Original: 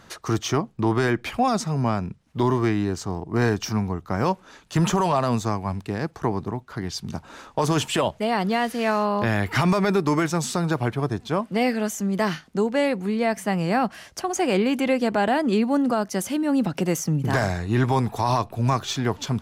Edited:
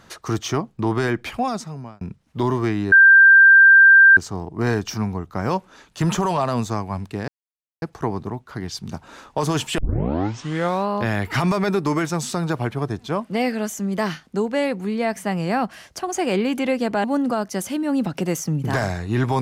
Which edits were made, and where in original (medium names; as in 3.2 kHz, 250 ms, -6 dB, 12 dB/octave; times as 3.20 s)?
1.29–2.01 s: fade out
2.92 s: add tone 1.58 kHz -6.5 dBFS 1.25 s
6.03 s: insert silence 0.54 s
7.99 s: tape start 1.10 s
15.25–15.64 s: delete